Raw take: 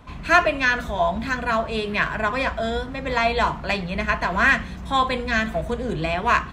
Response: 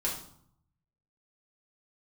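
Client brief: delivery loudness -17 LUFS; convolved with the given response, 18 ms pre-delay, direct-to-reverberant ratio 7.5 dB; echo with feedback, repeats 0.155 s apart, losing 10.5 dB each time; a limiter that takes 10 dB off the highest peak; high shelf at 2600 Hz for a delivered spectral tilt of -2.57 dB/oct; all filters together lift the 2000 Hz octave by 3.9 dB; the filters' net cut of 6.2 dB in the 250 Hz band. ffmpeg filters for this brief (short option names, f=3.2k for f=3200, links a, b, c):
-filter_complex "[0:a]equalizer=f=250:t=o:g=-8,equalizer=f=2k:t=o:g=8.5,highshelf=f=2.6k:g=-8.5,alimiter=limit=-11.5dB:level=0:latency=1,aecho=1:1:155|310|465:0.299|0.0896|0.0269,asplit=2[a][b];[1:a]atrim=start_sample=2205,adelay=18[c];[b][c]afir=irnorm=-1:irlink=0,volume=-13dB[d];[a][d]amix=inputs=2:normalize=0,volume=5dB"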